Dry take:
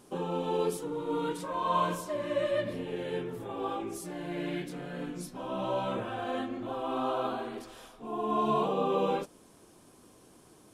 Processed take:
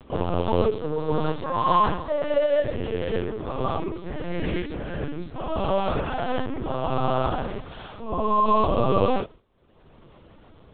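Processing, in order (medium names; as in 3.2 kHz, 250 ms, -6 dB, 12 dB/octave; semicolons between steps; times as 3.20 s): gate with hold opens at -43 dBFS; upward compressor, threshold -40 dBFS; LPC vocoder at 8 kHz pitch kept; trim +8.5 dB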